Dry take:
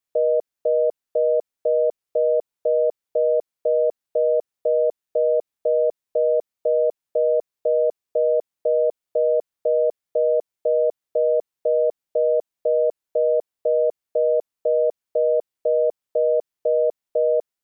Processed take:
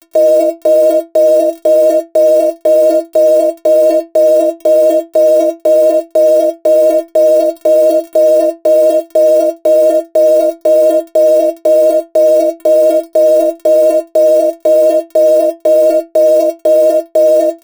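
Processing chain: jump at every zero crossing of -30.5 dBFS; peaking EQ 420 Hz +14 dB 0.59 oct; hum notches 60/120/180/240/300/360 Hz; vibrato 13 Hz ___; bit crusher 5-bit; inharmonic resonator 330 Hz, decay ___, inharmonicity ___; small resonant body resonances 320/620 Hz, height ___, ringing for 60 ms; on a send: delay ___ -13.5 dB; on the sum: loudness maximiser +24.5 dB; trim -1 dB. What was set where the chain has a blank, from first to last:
18 cents, 0.21 s, 0.008, 17 dB, 96 ms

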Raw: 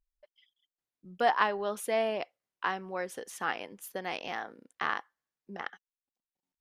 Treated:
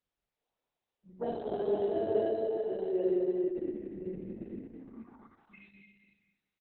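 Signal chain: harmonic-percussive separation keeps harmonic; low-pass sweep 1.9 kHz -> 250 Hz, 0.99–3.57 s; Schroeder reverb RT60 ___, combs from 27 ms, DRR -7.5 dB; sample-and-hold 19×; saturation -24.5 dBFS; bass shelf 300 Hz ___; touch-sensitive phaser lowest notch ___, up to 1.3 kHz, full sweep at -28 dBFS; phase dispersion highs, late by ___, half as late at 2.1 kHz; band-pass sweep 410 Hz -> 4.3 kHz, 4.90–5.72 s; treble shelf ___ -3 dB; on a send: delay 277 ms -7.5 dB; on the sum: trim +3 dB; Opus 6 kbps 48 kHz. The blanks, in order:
2.1 s, +8.5 dB, 300 Hz, 46 ms, 5.9 kHz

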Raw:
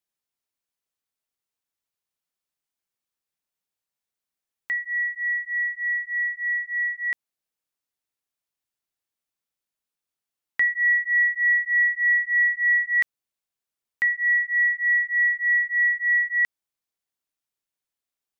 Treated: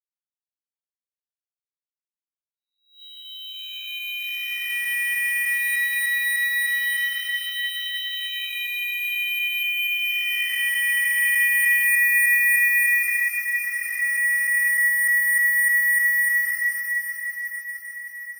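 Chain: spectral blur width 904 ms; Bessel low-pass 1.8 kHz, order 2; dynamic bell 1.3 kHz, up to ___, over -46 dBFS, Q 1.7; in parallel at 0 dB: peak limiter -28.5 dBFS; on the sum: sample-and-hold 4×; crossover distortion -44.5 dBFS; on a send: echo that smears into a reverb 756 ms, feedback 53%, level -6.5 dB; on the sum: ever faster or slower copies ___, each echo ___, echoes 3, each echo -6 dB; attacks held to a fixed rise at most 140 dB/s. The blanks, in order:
+8 dB, 144 ms, +4 st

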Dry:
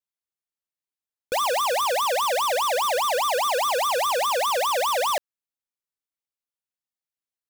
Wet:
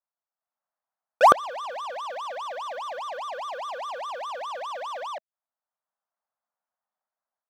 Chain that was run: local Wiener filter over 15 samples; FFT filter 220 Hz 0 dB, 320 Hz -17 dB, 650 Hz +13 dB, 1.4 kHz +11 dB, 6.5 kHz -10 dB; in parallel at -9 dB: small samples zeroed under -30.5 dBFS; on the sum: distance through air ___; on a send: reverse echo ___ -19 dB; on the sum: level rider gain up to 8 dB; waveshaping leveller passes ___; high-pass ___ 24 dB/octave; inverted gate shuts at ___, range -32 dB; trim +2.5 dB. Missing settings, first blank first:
260 m, 111 ms, 3, 200 Hz, -5 dBFS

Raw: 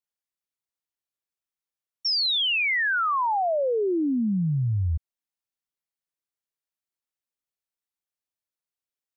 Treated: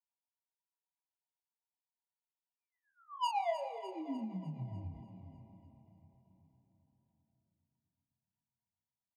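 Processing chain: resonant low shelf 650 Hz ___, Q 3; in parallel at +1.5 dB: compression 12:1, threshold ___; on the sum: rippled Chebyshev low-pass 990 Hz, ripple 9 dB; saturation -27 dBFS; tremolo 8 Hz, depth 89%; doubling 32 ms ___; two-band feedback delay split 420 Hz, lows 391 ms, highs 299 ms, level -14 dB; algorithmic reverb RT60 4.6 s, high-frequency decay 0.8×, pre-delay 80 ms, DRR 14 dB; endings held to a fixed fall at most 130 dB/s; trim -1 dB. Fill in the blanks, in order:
-13 dB, -27 dBFS, -5 dB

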